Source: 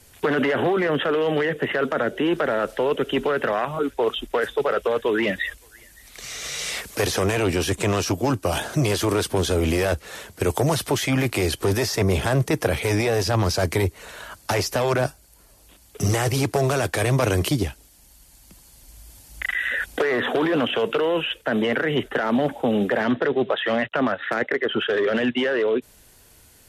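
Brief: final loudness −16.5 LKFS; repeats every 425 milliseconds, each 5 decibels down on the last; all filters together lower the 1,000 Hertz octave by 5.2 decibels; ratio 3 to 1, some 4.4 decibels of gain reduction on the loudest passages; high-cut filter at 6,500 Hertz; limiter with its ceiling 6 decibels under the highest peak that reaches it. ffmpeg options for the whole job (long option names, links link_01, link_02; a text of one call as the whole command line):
ffmpeg -i in.wav -af "lowpass=6500,equalizer=frequency=1000:width_type=o:gain=-7.5,acompressor=threshold=-23dB:ratio=3,alimiter=limit=-19dB:level=0:latency=1,aecho=1:1:425|850|1275|1700|2125|2550|2975:0.562|0.315|0.176|0.0988|0.0553|0.031|0.0173,volume=10.5dB" out.wav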